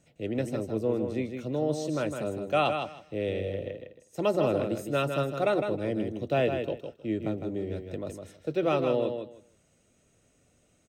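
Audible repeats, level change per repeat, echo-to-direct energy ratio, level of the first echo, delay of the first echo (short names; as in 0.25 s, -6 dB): 2, -15.0 dB, -6.5 dB, -6.5 dB, 0.157 s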